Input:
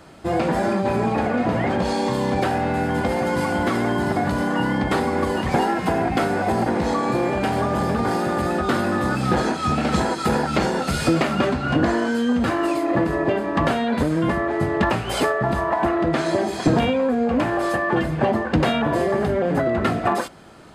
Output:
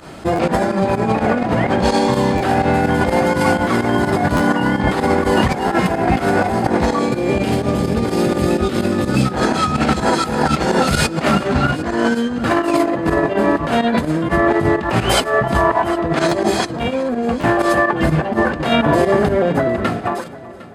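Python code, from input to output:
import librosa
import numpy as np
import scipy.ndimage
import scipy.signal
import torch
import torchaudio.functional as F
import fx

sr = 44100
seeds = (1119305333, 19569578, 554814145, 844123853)

y = fx.fade_out_tail(x, sr, length_s=2.38)
y = fx.over_compress(y, sr, threshold_db=-23.0, ratio=-0.5)
y = fx.band_shelf(y, sr, hz=1100.0, db=-8.5, octaves=1.7, at=(6.99, 9.25))
y = fx.volume_shaper(y, sr, bpm=126, per_beat=2, depth_db=-13, release_ms=61.0, shape='fast start')
y = fx.echo_heads(y, sr, ms=378, heads='first and second', feedback_pct=40, wet_db=-21.0)
y = fx.buffer_glitch(y, sr, at_s=(0.35, 2.37, 4.36, 5.67, 16.28, 17.4), block=512, repeats=2)
y = y * librosa.db_to_amplitude(8.0)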